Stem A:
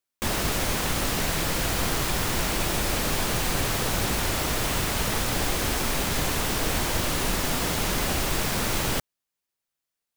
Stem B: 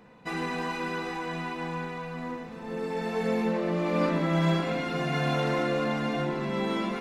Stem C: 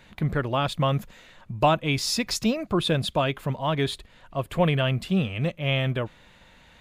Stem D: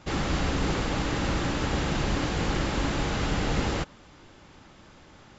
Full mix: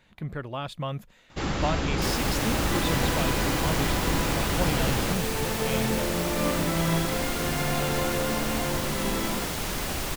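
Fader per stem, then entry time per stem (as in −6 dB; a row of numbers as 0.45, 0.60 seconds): −4.5, −1.5, −8.5, −0.5 decibels; 1.80, 2.45, 0.00, 1.30 seconds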